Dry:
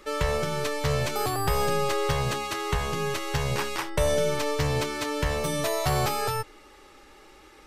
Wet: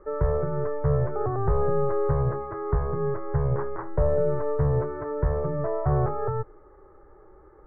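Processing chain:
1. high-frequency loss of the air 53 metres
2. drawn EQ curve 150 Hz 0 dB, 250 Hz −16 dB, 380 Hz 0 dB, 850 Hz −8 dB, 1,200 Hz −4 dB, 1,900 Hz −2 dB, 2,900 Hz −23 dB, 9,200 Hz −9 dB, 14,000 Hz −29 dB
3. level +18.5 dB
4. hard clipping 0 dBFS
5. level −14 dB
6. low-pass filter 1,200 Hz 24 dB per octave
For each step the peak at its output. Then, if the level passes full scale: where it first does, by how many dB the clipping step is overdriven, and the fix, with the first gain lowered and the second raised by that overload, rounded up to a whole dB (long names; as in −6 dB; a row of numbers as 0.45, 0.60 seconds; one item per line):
−12.5, −14.5, +4.0, 0.0, −14.0, −13.0 dBFS
step 3, 4.0 dB
step 3 +14.5 dB, step 5 −10 dB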